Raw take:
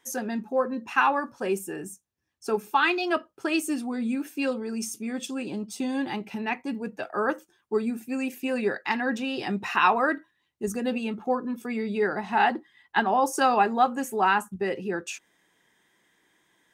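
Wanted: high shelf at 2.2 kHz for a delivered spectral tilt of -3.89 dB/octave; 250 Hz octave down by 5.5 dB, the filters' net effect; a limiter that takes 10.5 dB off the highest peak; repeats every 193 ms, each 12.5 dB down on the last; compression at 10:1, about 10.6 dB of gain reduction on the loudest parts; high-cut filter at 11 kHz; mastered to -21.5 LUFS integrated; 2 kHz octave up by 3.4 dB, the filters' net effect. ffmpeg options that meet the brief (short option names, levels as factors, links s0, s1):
-af "lowpass=11000,equalizer=f=250:t=o:g=-6.5,equalizer=f=2000:t=o:g=8.5,highshelf=f=2200:g=-7,acompressor=threshold=0.0501:ratio=10,alimiter=level_in=1.06:limit=0.0631:level=0:latency=1,volume=0.944,aecho=1:1:193|386|579:0.237|0.0569|0.0137,volume=4.47"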